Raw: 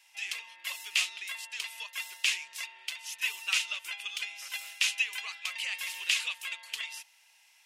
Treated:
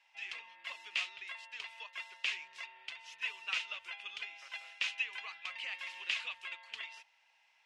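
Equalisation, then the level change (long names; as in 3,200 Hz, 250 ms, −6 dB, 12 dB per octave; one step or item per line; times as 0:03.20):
head-to-tape spacing loss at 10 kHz 29 dB
+1.0 dB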